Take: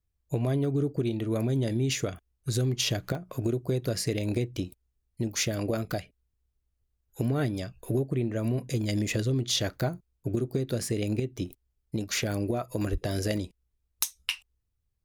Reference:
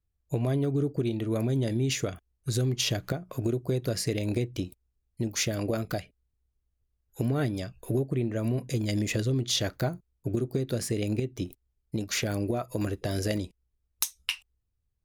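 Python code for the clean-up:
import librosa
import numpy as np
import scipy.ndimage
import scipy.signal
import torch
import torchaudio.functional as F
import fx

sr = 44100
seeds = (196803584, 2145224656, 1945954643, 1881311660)

y = fx.highpass(x, sr, hz=140.0, slope=24, at=(12.91, 13.03), fade=0.02)
y = fx.fix_interpolate(y, sr, at_s=(3.15,), length_ms=1.2)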